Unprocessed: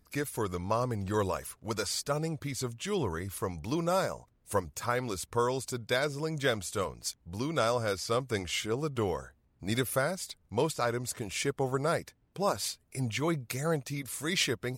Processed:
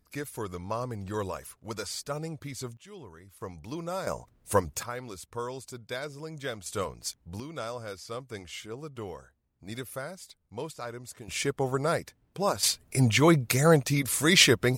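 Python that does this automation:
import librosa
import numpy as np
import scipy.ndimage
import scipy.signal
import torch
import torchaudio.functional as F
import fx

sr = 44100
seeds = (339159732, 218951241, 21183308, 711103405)

y = fx.gain(x, sr, db=fx.steps((0.0, -3.0), (2.77, -15.0), (3.41, -5.5), (4.07, 5.5), (4.83, -6.5), (6.66, 0.5), (7.4, -8.0), (11.28, 2.0), (12.63, 10.0)))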